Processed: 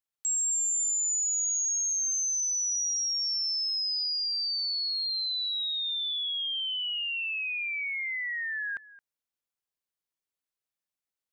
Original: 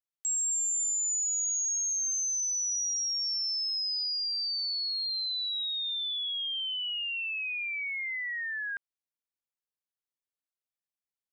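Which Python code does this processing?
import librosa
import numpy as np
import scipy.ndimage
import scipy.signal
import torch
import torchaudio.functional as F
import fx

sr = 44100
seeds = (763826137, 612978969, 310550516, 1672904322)

y = x + 10.0 ** (-19.0 / 20.0) * np.pad(x, (int(220 * sr / 1000.0), 0))[:len(x)]
y = y * 10.0 ** (1.5 / 20.0)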